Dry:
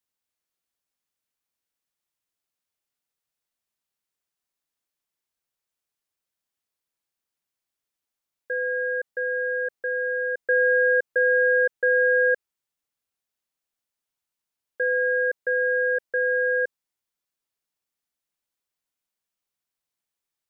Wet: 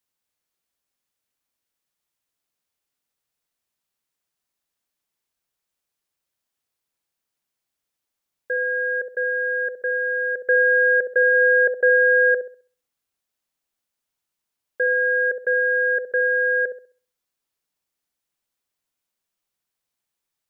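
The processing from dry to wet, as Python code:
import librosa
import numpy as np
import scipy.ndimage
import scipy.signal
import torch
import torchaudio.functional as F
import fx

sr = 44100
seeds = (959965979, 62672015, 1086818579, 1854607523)

y = fx.peak_eq(x, sr, hz=730.0, db=10.0, octaves=0.51, at=(11.33, 12.29), fade=0.02)
y = fx.echo_wet_lowpass(y, sr, ms=66, feedback_pct=31, hz=810.0, wet_db=-7.0)
y = y * 10.0 ** (3.5 / 20.0)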